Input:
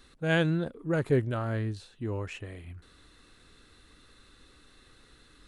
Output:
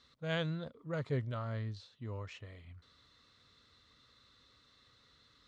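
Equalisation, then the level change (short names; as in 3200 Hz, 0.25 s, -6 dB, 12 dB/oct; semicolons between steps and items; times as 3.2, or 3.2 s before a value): speaker cabinet 110–5700 Hz, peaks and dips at 180 Hz -6 dB, 790 Hz -8 dB, 1600 Hz -9 dB, 2600 Hz -8 dB; bell 340 Hz -14 dB 0.92 oct; -2.5 dB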